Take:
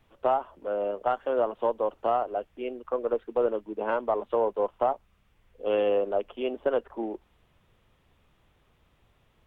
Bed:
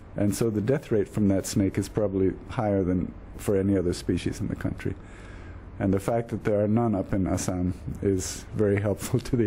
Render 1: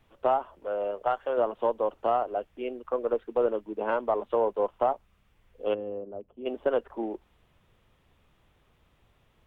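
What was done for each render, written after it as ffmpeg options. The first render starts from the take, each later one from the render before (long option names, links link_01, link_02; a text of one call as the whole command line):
ffmpeg -i in.wav -filter_complex "[0:a]asettb=1/sr,asplit=3[link_01][link_02][link_03];[link_01]atrim=end=0.554[link_04];[link_02]atrim=start=0.55:end=1.38,asetpts=PTS-STARTPTS,afade=type=in:duration=0.004:curve=qsin,afade=type=out:start_time=0.826:duration=0.004:curve=qsin,equalizer=frequency=250:width=1.5:gain=-8[link_05];[link_03]atrim=start=1.376[link_06];[link_04][link_05]acrossfade=duration=0.004:curve1=hsin:curve2=qsin[link_07];[link_07][link_06]acrossfade=duration=0.004:curve1=qsin:curve2=hsin,asplit=3[link_08][link_09][link_10];[link_08]afade=type=out:start_time=5.73:duration=0.02[link_11];[link_09]bandpass=frequency=120:width_type=q:width=0.93,afade=type=in:start_time=5.73:duration=0.02,afade=type=out:start_time=6.45:duration=0.02[link_12];[link_10]afade=type=in:start_time=6.45:duration=0.02[link_13];[link_11][link_12][link_13]amix=inputs=3:normalize=0" out.wav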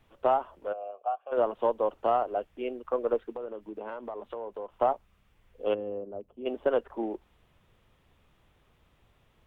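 ffmpeg -i in.wav -filter_complex "[0:a]asplit=3[link_01][link_02][link_03];[link_01]afade=type=out:start_time=0.72:duration=0.02[link_04];[link_02]asplit=3[link_05][link_06][link_07];[link_05]bandpass=frequency=730:width_type=q:width=8,volume=0dB[link_08];[link_06]bandpass=frequency=1090:width_type=q:width=8,volume=-6dB[link_09];[link_07]bandpass=frequency=2440:width_type=q:width=8,volume=-9dB[link_10];[link_08][link_09][link_10]amix=inputs=3:normalize=0,afade=type=in:start_time=0.72:duration=0.02,afade=type=out:start_time=1.31:duration=0.02[link_11];[link_03]afade=type=in:start_time=1.31:duration=0.02[link_12];[link_04][link_11][link_12]amix=inputs=3:normalize=0,asettb=1/sr,asplit=3[link_13][link_14][link_15];[link_13]atrim=end=3.354[link_16];[link_14]atrim=start=3.35:end=4.72,asetpts=PTS-STARTPTS,afade=type=in:duration=0.004:curve=qsin,afade=type=out:start_time=1.366:duration=0.004:curve=qsin,acompressor=threshold=-35dB:ratio=5:attack=3.2:release=140:knee=1:detection=peak[link_17];[link_15]atrim=start=4.716[link_18];[link_16][link_17]acrossfade=duration=0.004:curve1=hsin:curve2=qsin[link_19];[link_19][link_18]acrossfade=duration=0.004:curve1=qsin:curve2=hsin" out.wav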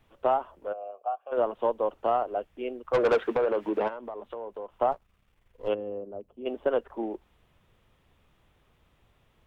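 ffmpeg -i in.wav -filter_complex "[0:a]asettb=1/sr,asplit=3[link_01][link_02][link_03];[link_01]atrim=end=0.524[link_04];[link_02]atrim=start=0.52:end=1.25,asetpts=PTS-STARTPTS,afade=type=in:duration=0.004:curve=qsin,afade=type=out:start_time=0.726:duration=0.004:curve=qsin,equalizer=frequency=3200:width_type=o:width=1.7:gain=-3[link_05];[link_03]atrim=start=1.246[link_06];[link_04][link_05]acrossfade=duration=0.004:curve1=hsin:curve2=qsin[link_07];[link_07][link_06]acrossfade=duration=0.004:curve1=qsin:curve2=hsin,asplit=3[link_08][link_09][link_10];[link_08]afade=type=out:start_time=2.93:duration=0.02[link_11];[link_09]asplit=2[link_12][link_13];[link_13]highpass=frequency=720:poles=1,volume=27dB,asoftclip=type=tanh:threshold=-14.5dB[link_14];[link_12][link_14]amix=inputs=2:normalize=0,lowpass=frequency=2500:poles=1,volume=-6dB,afade=type=in:start_time=2.93:duration=0.02,afade=type=out:start_time=3.87:duration=0.02[link_15];[link_10]afade=type=in:start_time=3.87:duration=0.02[link_16];[link_11][link_15][link_16]amix=inputs=3:normalize=0,asplit=3[link_17][link_18][link_19];[link_17]afade=type=out:start_time=4.91:duration=0.02[link_20];[link_18]aeval=exprs='if(lt(val(0),0),0.447*val(0),val(0))':channel_layout=same,afade=type=in:start_time=4.91:duration=0.02,afade=type=out:start_time=5.67:duration=0.02[link_21];[link_19]afade=type=in:start_time=5.67:duration=0.02[link_22];[link_20][link_21][link_22]amix=inputs=3:normalize=0" out.wav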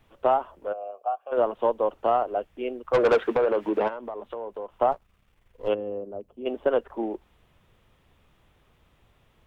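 ffmpeg -i in.wav -af "volume=3dB" out.wav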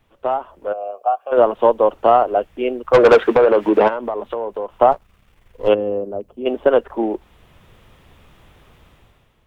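ffmpeg -i in.wav -af "dynaudnorm=framelen=110:gausssize=11:maxgain=13dB" out.wav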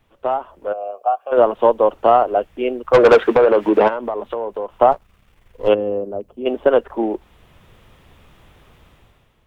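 ffmpeg -i in.wav -af anull out.wav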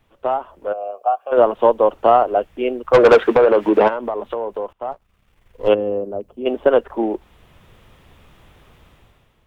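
ffmpeg -i in.wav -filter_complex "[0:a]asplit=2[link_01][link_02];[link_01]atrim=end=4.73,asetpts=PTS-STARTPTS,afade=type=out:start_time=4.726:duration=0.004:curve=hsin:silence=0.0630957[link_03];[link_02]atrim=start=4.73,asetpts=PTS-STARTPTS,afade=type=in:duration=0.99:silence=0.0630957[link_04];[link_03][link_04]concat=n=2:v=0:a=1" out.wav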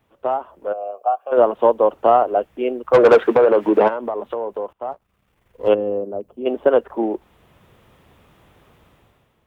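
ffmpeg -i in.wav -af "highpass=frequency=120:poles=1,equalizer=frequency=4100:width=0.4:gain=-5" out.wav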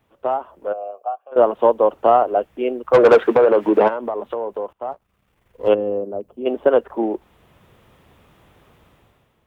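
ffmpeg -i in.wav -filter_complex "[0:a]asplit=2[link_01][link_02];[link_01]atrim=end=1.36,asetpts=PTS-STARTPTS,afade=type=out:start_time=0.71:duration=0.65:silence=0.141254[link_03];[link_02]atrim=start=1.36,asetpts=PTS-STARTPTS,afade=type=in:duration=0.004:curve=hsin:silence=0.141254[link_04];[link_03][link_04]concat=n=2:v=0:a=1" out.wav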